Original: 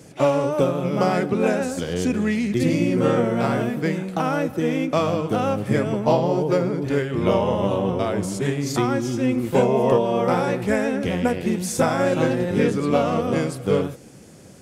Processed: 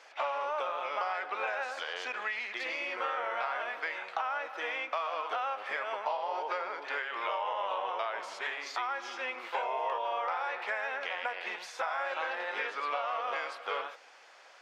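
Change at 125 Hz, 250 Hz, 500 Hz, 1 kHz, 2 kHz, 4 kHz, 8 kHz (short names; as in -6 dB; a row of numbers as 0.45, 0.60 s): under -40 dB, -36.0 dB, -17.5 dB, -6.0 dB, -3.0 dB, -6.5 dB, -20.0 dB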